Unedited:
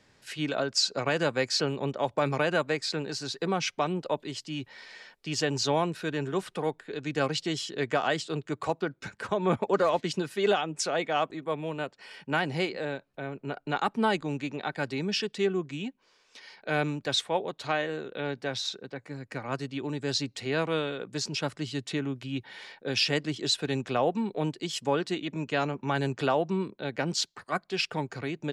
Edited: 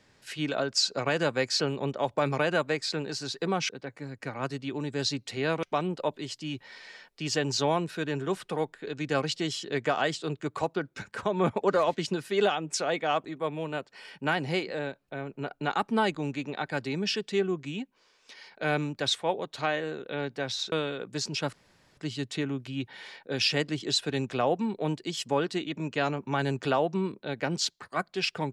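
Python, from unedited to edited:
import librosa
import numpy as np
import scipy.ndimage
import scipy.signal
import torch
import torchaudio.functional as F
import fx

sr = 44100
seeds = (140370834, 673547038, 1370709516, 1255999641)

y = fx.edit(x, sr, fx.move(start_s=18.78, length_s=1.94, to_s=3.69),
    fx.insert_room_tone(at_s=21.53, length_s=0.44), tone=tone)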